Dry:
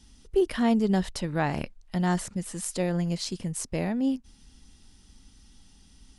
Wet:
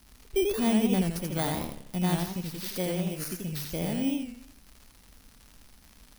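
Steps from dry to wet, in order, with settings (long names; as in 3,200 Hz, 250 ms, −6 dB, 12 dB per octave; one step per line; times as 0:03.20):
samples in bit-reversed order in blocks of 16 samples
surface crackle 140 per second −37 dBFS
feedback echo with a swinging delay time 84 ms, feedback 43%, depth 165 cents, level −3.5 dB
level −3.5 dB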